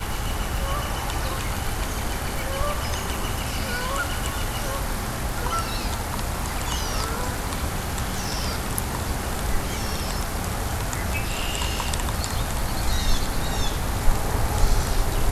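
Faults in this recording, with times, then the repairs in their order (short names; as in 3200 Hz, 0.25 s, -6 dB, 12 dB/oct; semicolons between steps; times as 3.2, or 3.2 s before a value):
crackle 20/s -30 dBFS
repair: de-click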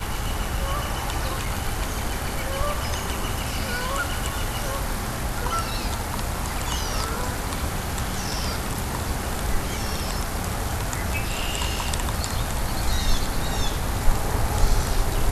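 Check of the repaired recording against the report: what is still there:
none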